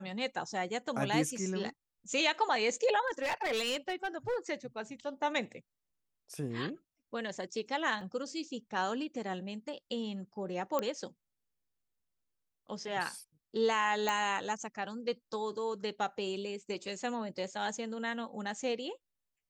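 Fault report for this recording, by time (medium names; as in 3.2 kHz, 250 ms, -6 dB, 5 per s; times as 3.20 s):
3.07–4.37 s: clipped -29.5 dBFS
8.01 s: dropout 2.4 ms
10.79 s: pop -18 dBFS
14.09 s: pop -17 dBFS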